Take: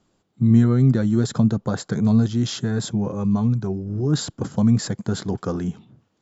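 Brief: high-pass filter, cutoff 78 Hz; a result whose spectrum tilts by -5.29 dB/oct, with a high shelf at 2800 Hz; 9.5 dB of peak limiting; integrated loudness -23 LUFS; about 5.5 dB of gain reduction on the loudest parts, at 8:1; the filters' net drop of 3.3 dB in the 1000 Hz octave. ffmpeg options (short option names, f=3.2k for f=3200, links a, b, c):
-af "highpass=78,equalizer=f=1k:t=o:g=-5.5,highshelf=f=2.8k:g=7,acompressor=threshold=-17dB:ratio=8,volume=5dB,alimiter=limit=-14dB:level=0:latency=1"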